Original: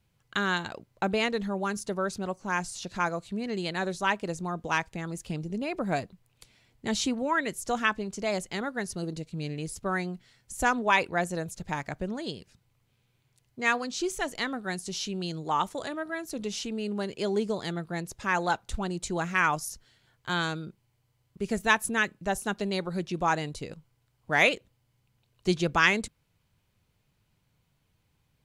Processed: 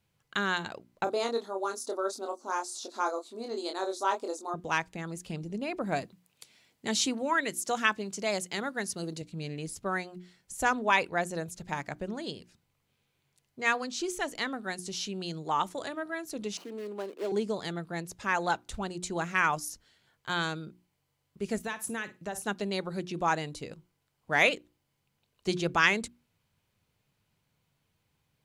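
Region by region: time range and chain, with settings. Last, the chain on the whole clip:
0:01.04–0:04.54: linear-phase brick-wall high-pass 230 Hz + flat-topped bell 2,200 Hz −12.5 dB 1.1 octaves + double-tracking delay 26 ms −4.5 dB
0:06.01–0:09.22: high-pass filter 110 Hz + high-shelf EQ 2,900 Hz +5.5 dB
0:16.57–0:17.32: running median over 25 samples + Butterworth high-pass 250 Hz
0:21.61–0:22.42: high-pass filter 52 Hz + downward compressor 16 to 1, threshold −28 dBFS + flutter between parallel walls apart 9.2 metres, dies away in 0.23 s
whole clip: low-shelf EQ 75 Hz −9.5 dB; mains-hum notches 60/120/180/240/300/360 Hz; level −1.5 dB

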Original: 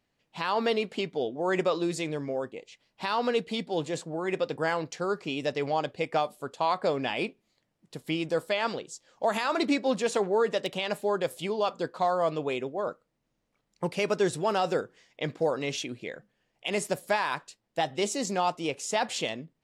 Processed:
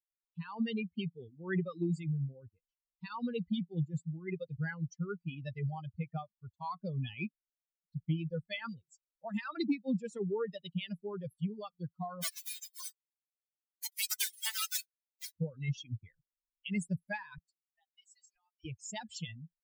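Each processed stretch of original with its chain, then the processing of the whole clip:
0:12.21–0:15.34: spectral envelope flattened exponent 0.1 + high-pass filter 480 Hz 24 dB per octave + comb filter 4.6 ms
0:17.38–0:18.65: high-pass filter 660 Hz 24 dB per octave + downward compressor 4 to 1, threshold −38 dBFS
whole clip: spectral dynamics exaggerated over time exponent 3; drawn EQ curve 170 Hz 0 dB, 630 Hz −29 dB, 2,000 Hz −17 dB; downward compressor 3 to 1, threshold −47 dBFS; level +16.5 dB

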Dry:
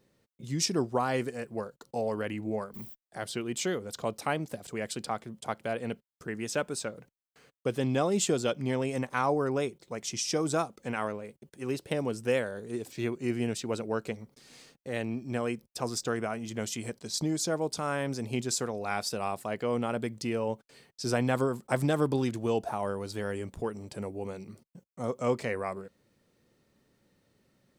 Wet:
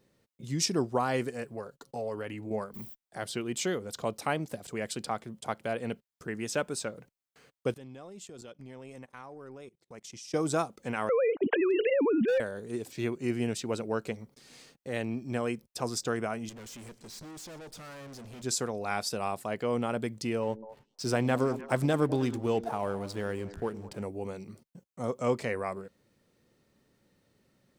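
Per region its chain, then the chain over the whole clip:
0:01.44–0:02.51: downward compressor 1.5 to 1, threshold −40 dBFS + comb filter 7.2 ms, depth 33%
0:07.72–0:10.34: transient designer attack −5 dB, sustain −10 dB + output level in coarse steps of 23 dB
0:11.09–0:12.40: three sine waves on the formant tracks + hard clipping −24 dBFS + envelope flattener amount 100%
0:16.49–0:18.44: tube saturation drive 44 dB, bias 0.55 + repeating echo 120 ms, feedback 46%, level −20 dB
0:20.42–0:24.03: slack as between gear wheels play −45 dBFS + echo through a band-pass that steps 102 ms, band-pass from 270 Hz, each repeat 1.4 octaves, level −9.5 dB
whole clip: no processing

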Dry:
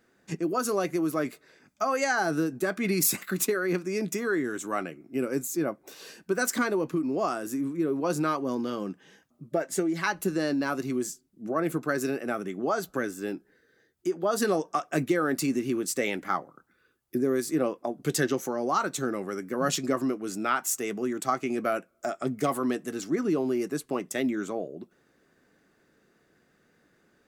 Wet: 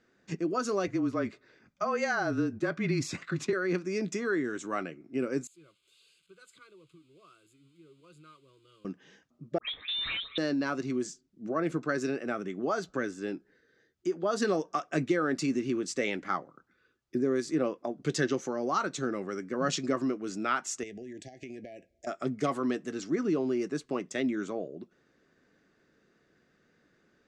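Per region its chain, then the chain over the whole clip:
0:00.87–0:03.53: low-pass filter 3,500 Hz 6 dB per octave + frequency shifter −27 Hz
0:05.47–0:08.85: spike at every zero crossing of −29 dBFS + guitar amp tone stack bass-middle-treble 6-0-2 + phaser with its sweep stopped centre 1,200 Hz, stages 8
0:09.58–0:10.38: all-pass dispersion lows, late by 108 ms, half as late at 1,700 Hz + hard clipping −29 dBFS + voice inversion scrambler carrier 3,900 Hz
0:20.83–0:22.07: low shelf with overshoot 120 Hz +10 dB, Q 1.5 + downward compressor 16 to 1, threshold −36 dBFS + linear-phase brick-wall band-stop 790–1,600 Hz
whole clip: low-pass filter 6,700 Hz 24 dB per octave; parametric band 820 Hz −3.5 dB 0.59 octaves; level −2 dB

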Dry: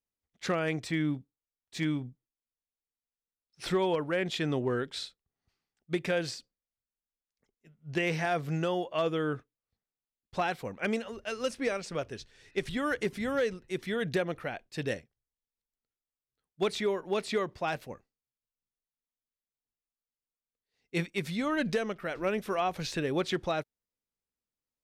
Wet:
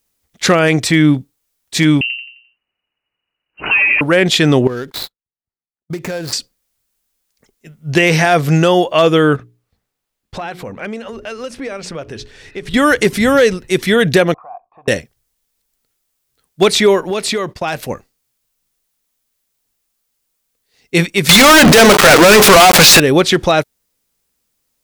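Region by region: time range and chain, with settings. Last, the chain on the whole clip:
0:02.01–0:04.01: repeating echo 87 ms, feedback 39%, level −6 dB + downward compressor 4 to 1, threshold −32 dBFS + voice inversion scrambler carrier 2,900 Hz
0:04.67–0:06.33: running median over 15 samples + noise gate −51 dBFS, range −34 dB + downward compressor 5 to 1, threshold −41 dBFS
0:09.36–0:12.74: high-shelf EQ 3,900 Hz −11 dB + mains-hum notches 60/120/180/240/300/360/420 Hz + downward compressor 3 to 1, threshold −47 dBFS
0:14.34–0:14.88: parametric band 1,100 Hz +13.5 dB 1.3 octaves + downward compressor 4 to 1, threshold −42 dBFS + formant resonators in series a
0:17.10–0:17.83: downward expander −45 dBFS + downward compressor 3 to 1, threshold −38 dBFS
0:21.29–0:23.00: mains-hum notches 60/120/180/240/300/360/420 Hz + centre clipping without the shift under −45 dBFS + mid-hump overdrive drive 36 dB, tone 6,500 Hz, clips at −18.5 dBFS
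whole clip: high-shelf EQ 4,900 Hz +7.5 dB; boost into a limiter +21 dB; level −1 dB

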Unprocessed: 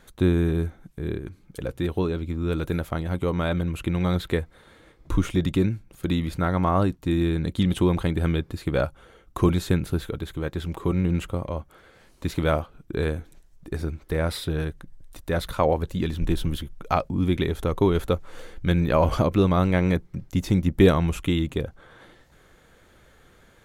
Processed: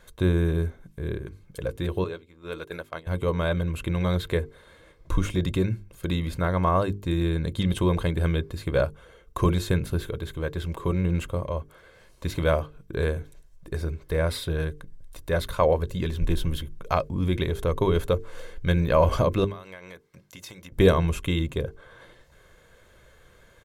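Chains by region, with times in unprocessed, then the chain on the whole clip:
0:02.04–0:03.07: high-pass filter 680 Hz 6 dB per octave + high-shelf EQ 5,800 Hz −5 dB + noise gate −37 dBFS, range −11 dB
0:19.44–0:20.72: high-pass filter 1,100 Hz 6 dB per octave + downward compressor 8 to 1, threshold −37 dBFS
whole clip: mains-hum notches 50/100/150/200/250/300/350/400/450 Hz; comb filter 1.9 ms, depth 42%; level −1 dB

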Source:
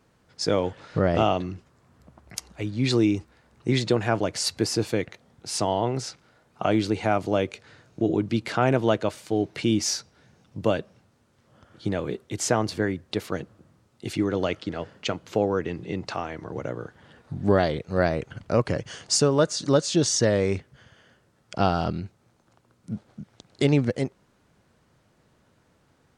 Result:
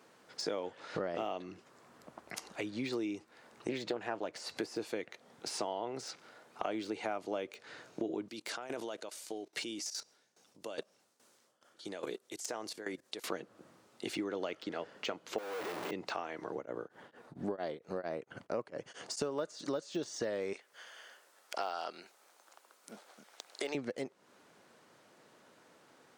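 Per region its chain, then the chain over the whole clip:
0:03.69–0:04.56: high-shelf EQ 4,000 Hz −5.5 dB + highs frequency-modulated by the lows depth 0.22 ms
0:08.28–0:13.24: bass and treble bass −5 dB, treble +11 dB + output level in coarse steps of 17 dB + shaped tremolo saw down 2.4 Hz, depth 85%
0:15.38–0:15.91: sign of each sample alone + parametric band 140 Hz −11 dB 2.9 octaves
0:16.55–0:19.22: parametric band 4,300 Hz −6.5 dB 2.8 octaves + tremolo along a rectified sine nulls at 4.4 Hz
0:20.53–0:23.75: high-pass filter 610 Hz + high-shelf EQ 8,700 Hz +10.5 dB
whole clip: de-essing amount 90%; high-pass filter 320 Hz 12 dB per octave; downward compressor 4 to 1, threshold −41 dBFS; level +4 dB

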